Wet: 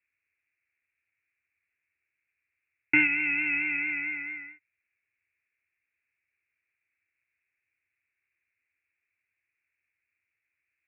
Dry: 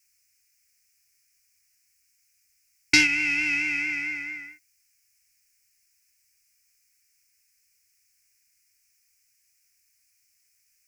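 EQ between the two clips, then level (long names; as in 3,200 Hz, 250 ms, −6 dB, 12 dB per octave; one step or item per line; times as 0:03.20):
high-pass filter 120 Hz 12 dB per octave
Butterworth low-pass 2,700 Hz 96 dB per octave
−2.0 dB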